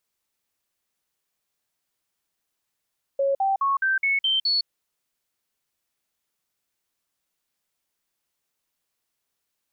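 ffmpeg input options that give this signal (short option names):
-f lavfi -i "aevalsrc='0.112*clip(min(mod(t,0.21),0.16-mod(t,0.21))/0.005,0,1)*sin(2*PI*551*pow(2,floor(t/0.21)/2)*mod(t,0.21))':d=1.47:s=44100"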